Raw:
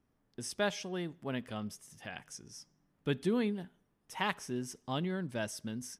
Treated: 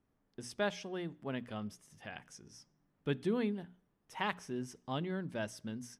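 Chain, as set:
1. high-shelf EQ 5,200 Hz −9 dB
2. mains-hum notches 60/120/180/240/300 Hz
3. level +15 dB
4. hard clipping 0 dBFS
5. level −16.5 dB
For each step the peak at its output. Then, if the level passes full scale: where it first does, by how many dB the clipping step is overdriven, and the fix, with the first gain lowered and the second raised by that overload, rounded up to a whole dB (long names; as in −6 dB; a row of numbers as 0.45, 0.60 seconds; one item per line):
−18.5, −18.0, −3.0, −3.0, −19.5 dBFS
no step passes full scale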